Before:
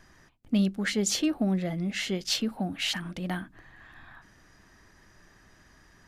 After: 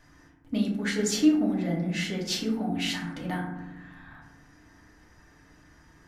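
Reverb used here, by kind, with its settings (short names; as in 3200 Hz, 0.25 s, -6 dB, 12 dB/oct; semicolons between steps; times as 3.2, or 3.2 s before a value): FDN reverb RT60 1 s, low-frequency decay 1.55×, high-frequency decay 0.35×, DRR -3 dB; gain -4 dB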